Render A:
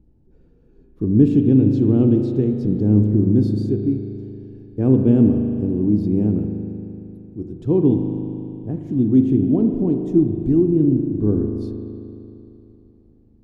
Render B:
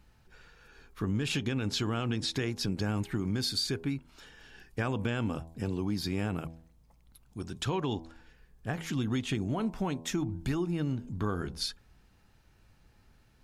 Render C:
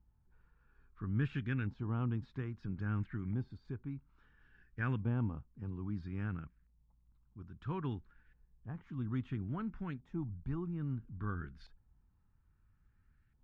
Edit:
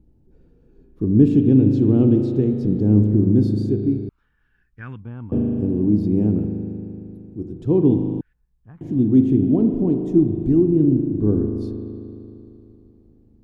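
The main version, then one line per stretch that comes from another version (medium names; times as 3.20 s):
A
4.09–5.32 s: from C
8.21–8.81 s: from C
not used: B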